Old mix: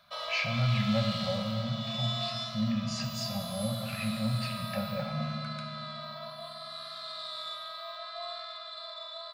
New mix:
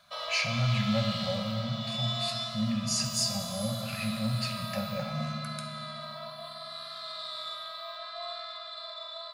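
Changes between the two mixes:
speech: remove LPF 3400 Hz 12 dB/oct; background: send +7.0 dB

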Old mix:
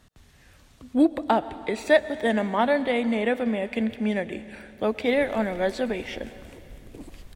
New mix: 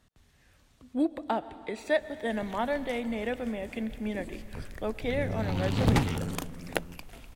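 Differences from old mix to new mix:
speech -8.0 dB; background: entry -2.80 s

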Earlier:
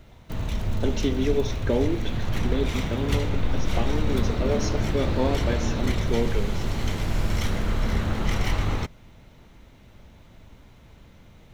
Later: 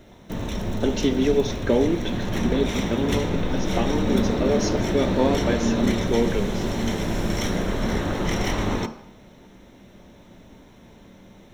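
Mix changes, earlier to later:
speech +4.0 dB; background: send on

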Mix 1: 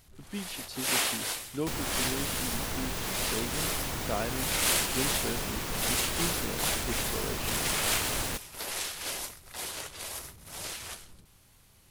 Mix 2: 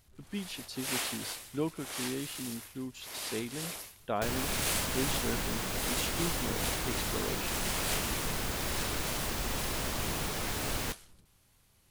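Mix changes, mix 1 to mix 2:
first sound -6.5 dB; second sound: entry +2.55 s

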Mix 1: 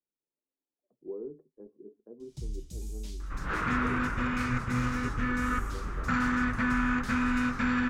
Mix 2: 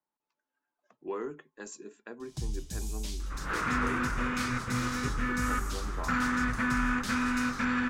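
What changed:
speech: remove ladder low-pass 560 Hz, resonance 40%; first sound +8.5 dB; master: add low shelf 160 Hz -7 dB

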